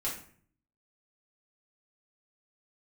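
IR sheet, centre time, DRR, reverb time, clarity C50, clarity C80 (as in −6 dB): 30 ms, −7.0 dB, 0.50 s, 6.0 dB, 10.5 dB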